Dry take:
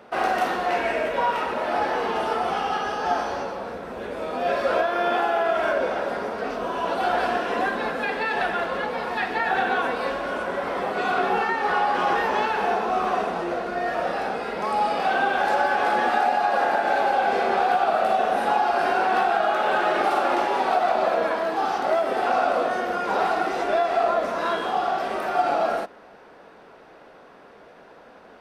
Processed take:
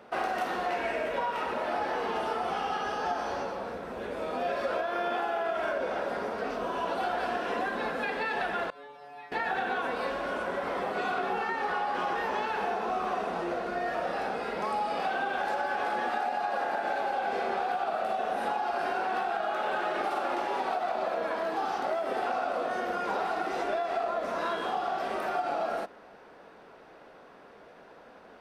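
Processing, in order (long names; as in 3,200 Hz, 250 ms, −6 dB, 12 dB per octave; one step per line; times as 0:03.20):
downward compressor, threshold −23 dBFS, peak gain reduction 7 dB
0:08.70–0:09.32: stiff-string resonator 140 Hz, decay 0.82 s, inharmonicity 0.002
level −4 dB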